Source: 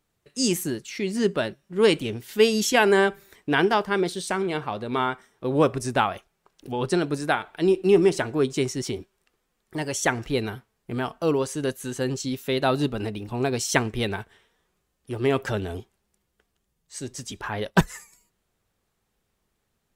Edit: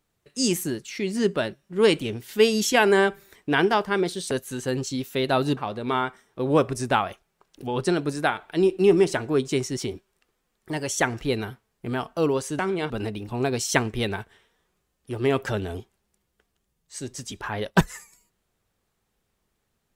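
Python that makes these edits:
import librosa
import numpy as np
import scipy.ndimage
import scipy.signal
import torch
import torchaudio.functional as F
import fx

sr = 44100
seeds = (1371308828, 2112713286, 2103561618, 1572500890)

y = fx.edit(x, sr, fx.swap(start_s=4.31, length_s=0.31, other_s=11.64, other_length_s=1.26), tone=tone)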